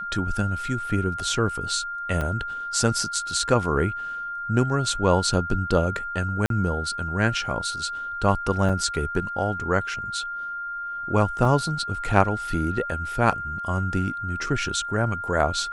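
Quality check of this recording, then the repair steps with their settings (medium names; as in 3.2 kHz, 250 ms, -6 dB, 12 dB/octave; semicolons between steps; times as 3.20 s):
whine 1.4 kHz -29 dBFS
2.21 s: dropout 4.8 ms
6.46–6.50 s: dropout 42 ms
8.69 s: dropout 4.7 ms
11.45 s: dropout 2.3 ms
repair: band-stop 1.4 kHz, Q 30; interpolate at 2.21 s, 4.8 ms; interpolate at 6.46 s, 42 ms; interpolate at 8.69 s, 4.7 ms; interpolate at 11.45 s, 2.3 ms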